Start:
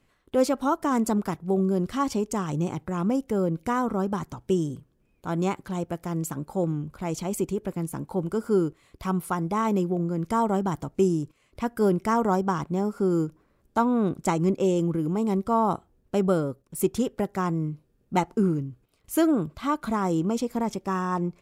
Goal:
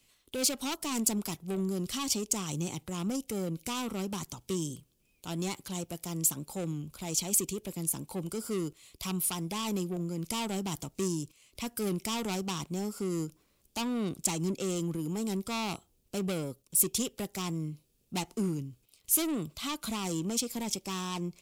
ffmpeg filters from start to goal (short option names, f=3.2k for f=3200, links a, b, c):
-filter_complex "[0:a]acrossover=split=250[a][b];[b]asoftclip=type=tanh:threshold=-26.5dB[c];[a][c]amix=inputs=2:normalize=0,aexciter=amount=4.8:drive=6.5:freq=2.4k,volume=-7dB"